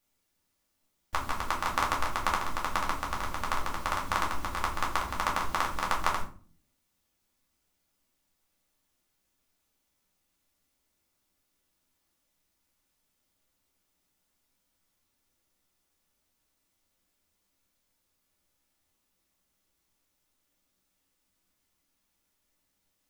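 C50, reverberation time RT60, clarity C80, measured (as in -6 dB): 9.0 dB, 0.40 s, 14.0 dB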